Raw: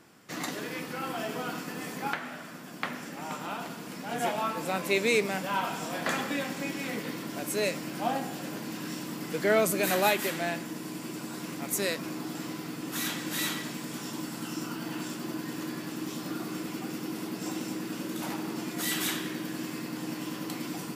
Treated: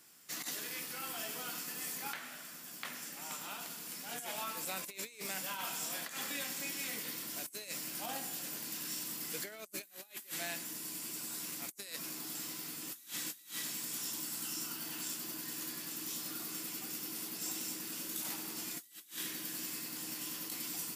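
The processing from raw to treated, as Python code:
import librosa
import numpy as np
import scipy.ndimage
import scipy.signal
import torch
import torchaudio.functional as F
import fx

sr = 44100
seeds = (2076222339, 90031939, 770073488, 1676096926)

y = librosa.effects.preemphasis(x, coef=0.9, zi=[0.0])
y = fx.over_compress(y, sr, threshold_db=-43.0, ratio=-0.5)
y = y * 10.0 ** (2.0 / 20.0)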